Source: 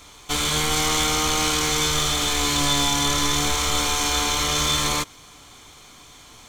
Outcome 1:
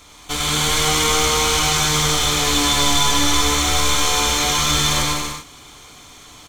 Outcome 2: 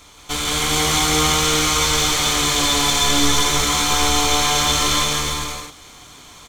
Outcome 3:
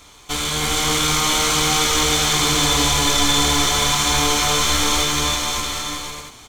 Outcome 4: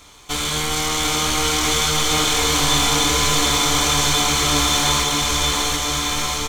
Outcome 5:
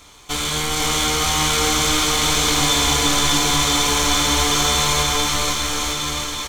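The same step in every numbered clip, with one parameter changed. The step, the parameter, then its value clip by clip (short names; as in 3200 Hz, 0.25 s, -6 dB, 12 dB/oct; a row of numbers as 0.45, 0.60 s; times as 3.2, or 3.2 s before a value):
bouncing-ball echo, first gap: 0.1, 0.17, 0.32, 0.74, 0.5 s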